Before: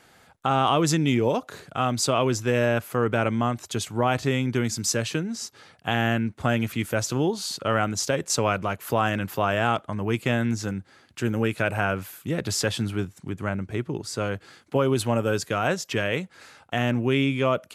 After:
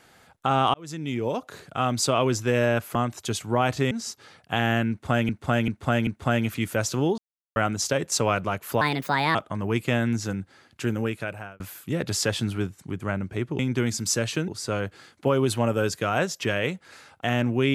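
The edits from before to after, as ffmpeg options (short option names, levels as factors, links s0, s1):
-filter_complex "[0:a]asplit=14[s0][s1][s2][s3][s4][s5][s6][s7][s8][s9][s10][s11][s12][s13];[s0]atrim=end=0.74,asetpts=PTS-STARTPTS,afade=t=out:st=0.736:d=0.004:c=hsin[s14];[s1]atrim=start=0.74:end=2.952,asetpts=PTS-STARTPTS,afade=t=in:d=1.32:c=qsin[s15];[s2]atrim=start=3.408:end=4.372[s16];[s3]atrim=start=5.258:end=6.642[s17];[s4]atrim=start=6.248:end=6.642[s18];[s5]atrim=start=6.248:end=6.642[s19];[s6]atrim=start=6.248:end=7.36,asetpts=PTS-STARTPTS,afade=t=out:st=1.108:d=0.004:c=hsin[s20];[s7]atrim=start=7.36:end=7.74,asetpts=PTS-STARTPTS,volume=0[s21];[s8]atrim=start=7.74:end=8.994,asetpts=PTS-STARTPTS,afade=t=in:d=0.004:c=hsin[s22];[s9]atrim=start=8.99:end=9.73,asetpts=PTS-STARTPTS,asetrate=60417,aresample=44100,atrim=end_sample=23820,asetpts=PTS-STARTPTS[s23];[s10]atrim=start=9.726:end=11.98,asetpts=PTS-STARTPTS,afade=t=out:st=1.484:d=0.77[s24];[s11]atrim=start=11.98:end=13.972,asetpts=PTS-STARTPTS,afade=t=in:d=0.004:c=hsin[s25];[s12]atrim=start=4.368:end=5.262[s26];[s13]atrim=start=13.968[s27];[s14][s15]concat=n=2:v=0:a=1[s28];[s28][s16]acrossfade=d=0.004:c1=hsin:c2=hsin[s29];[s29][s17]acrossfade=d=0.004:c1=hsin:c2=hsin[s30];[s30][s18]acrossfade=d=0.004:c1=hsin:c2=hsin[s31];[s31][s19]acrossfade=d=0.004:c1=hsin:c2=hsin[s32];[s20][s21][s22]concat=n=3:v=0:a=1[s33];[s32][s33]acrossfade=d=0.004:c1=hsin:c2=hsin[s34];[s34][s23]acrossfade=d=0.004:c1=hsin:c2=hsin[s35];[s24][s25]concat=n=2:v=0:a=1[s36];[s35][s36]acrossfade=d=0.004:c1=hsin:c2=hsin[s37];[s37][s26]acrossfade=d=0.004:c1=hsin:c2=hsin[s38];[s38][s27]acrossfade=d=0.004:c1=hsin:c2=hsin"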